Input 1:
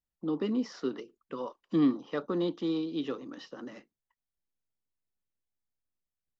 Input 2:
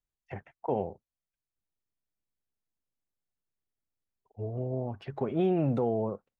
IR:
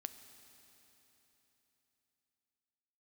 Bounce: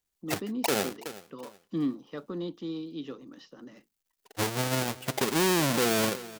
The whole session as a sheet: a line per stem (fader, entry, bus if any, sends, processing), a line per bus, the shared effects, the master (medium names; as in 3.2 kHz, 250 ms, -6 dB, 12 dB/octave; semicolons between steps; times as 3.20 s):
-9.0 dB, 0.00 s, no send, no echo send, bass shelf 250 Hz +10.5 dB
+1.5 dB, 0.00 s, no send, echo send -20.5 dB, square wave that keeps the level; high-pass 190 Hz 12 dB/octave; transient shaper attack +7 dB, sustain -4 dB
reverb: none
echo: feedback delay 373 ms, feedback 30%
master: treble shelf 2.8 kHz +8 dB; peak limiter -10 dBFS, peak gain reduction 11.5 dB